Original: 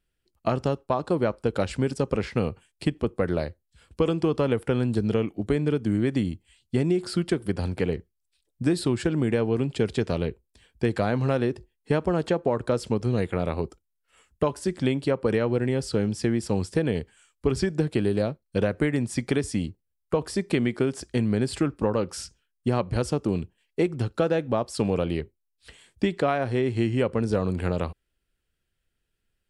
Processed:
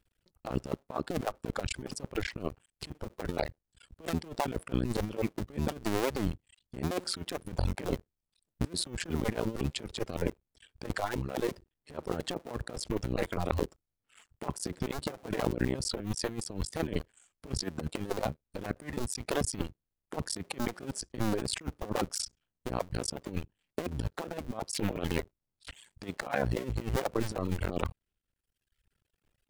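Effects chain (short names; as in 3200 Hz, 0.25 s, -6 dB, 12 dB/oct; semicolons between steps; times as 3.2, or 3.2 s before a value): cycle switcher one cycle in 2, muted; reverb removal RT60 1 s; negative-ratio compressor -32 dBFS, ratio -0.5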